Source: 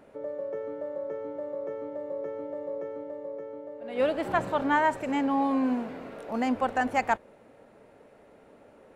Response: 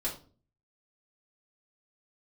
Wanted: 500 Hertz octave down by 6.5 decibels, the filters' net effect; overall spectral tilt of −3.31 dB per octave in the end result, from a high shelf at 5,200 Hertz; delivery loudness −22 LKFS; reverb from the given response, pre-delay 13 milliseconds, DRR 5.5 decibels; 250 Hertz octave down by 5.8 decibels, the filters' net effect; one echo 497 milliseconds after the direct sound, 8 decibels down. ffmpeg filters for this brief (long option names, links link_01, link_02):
-filter_complex "[0:a]equalizer=frequency=250:width_type=o:gain=-4.5,equalizer=frequency=500:width_type=o:gain=-7,highshelf=frequency=5200:gain=-3.5,aecho=1:1:497:0.398,asplit=2[link_01][link_02];[1:a]atrim=start_sample=2205,adelay=13[link_03];[link_02][link_03]afir=irnorm=-1:irlink=0,volume=-9.5dB[link_04];[link_01][link_04]amix=inputs=2:normalize=0,volume=10dB"